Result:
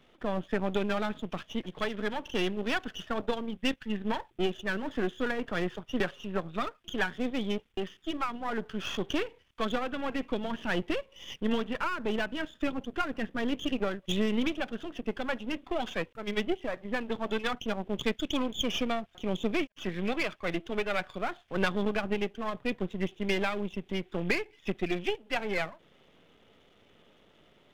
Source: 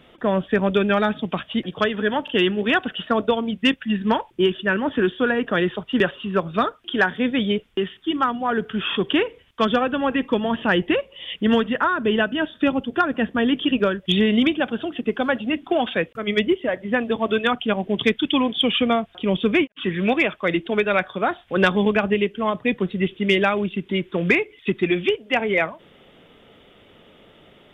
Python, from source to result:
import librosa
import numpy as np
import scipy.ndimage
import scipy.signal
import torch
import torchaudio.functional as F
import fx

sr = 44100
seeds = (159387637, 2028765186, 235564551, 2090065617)

y = np.where(x < 0.0, 10.0 ** (-12.0 / 20.0) * x, x)
y = y * 10.0 ** (-7.5 / 20.0)